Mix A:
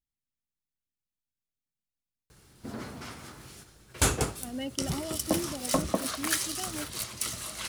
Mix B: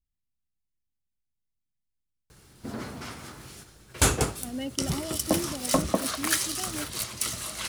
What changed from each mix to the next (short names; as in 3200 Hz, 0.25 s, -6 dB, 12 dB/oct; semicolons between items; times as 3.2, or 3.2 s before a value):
speech: add low shelf 130 Hz +11.5 dB; background +3.0 dB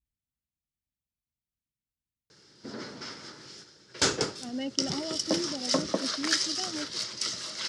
background: add speaker cabinet 220–6400 Hz, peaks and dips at 240 Hz -4 dB, 730 Hz -9 dB, 1100 Hz -6 dB, 2500 Hz -6 dB, 5100 Hz +9 dB; master: add HPF 41 Hz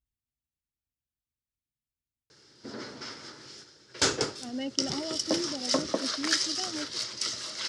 master: add bell 180 Hz -10.5 dB 0.23 oct